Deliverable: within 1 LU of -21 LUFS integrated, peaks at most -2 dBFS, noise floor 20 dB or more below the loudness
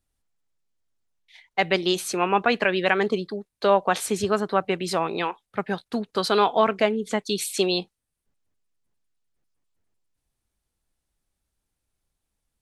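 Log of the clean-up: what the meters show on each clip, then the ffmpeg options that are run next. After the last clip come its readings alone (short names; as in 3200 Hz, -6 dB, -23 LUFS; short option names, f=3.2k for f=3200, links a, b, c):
loudness -24.0 LUFS; peak -5.5 dBFS; loudness target -21.0 LUFS
-> -af "volume=3dB"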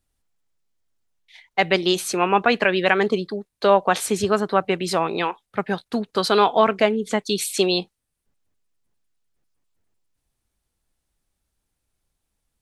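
loudness -21.0 LUFS; peak -2.5 dBFS; noise floor -79 dBFS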